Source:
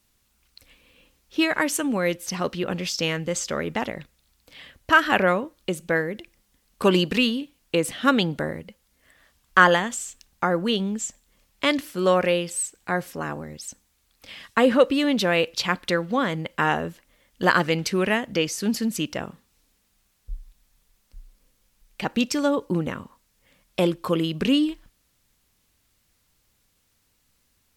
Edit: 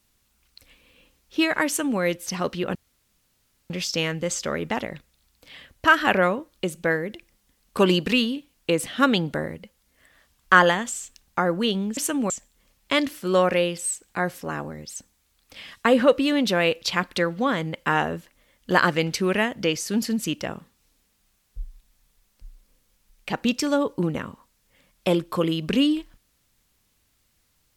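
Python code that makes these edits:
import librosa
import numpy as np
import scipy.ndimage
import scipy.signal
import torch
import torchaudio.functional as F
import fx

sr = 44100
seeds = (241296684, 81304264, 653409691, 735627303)

y = fx.edit(x, sr, fx.duplicate(start_s=1.67, length_s=0.33, to_s=11.02),
    fx.insert_room_tone(at_s=2.75, length_s=0.95), tone=tone)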